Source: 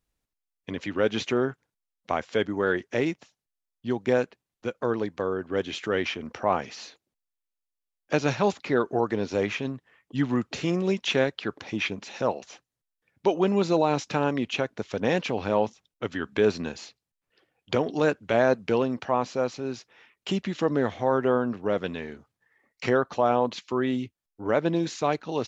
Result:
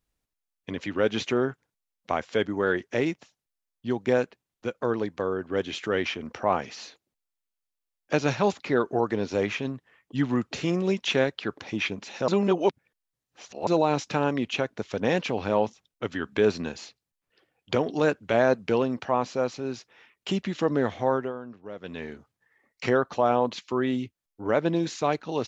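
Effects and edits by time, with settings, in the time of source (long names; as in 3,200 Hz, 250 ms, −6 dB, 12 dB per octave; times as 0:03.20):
0:12.28–0:13.67: reverse
0:21.09–0:22.04: duck −13.5 dB, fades 0.24 s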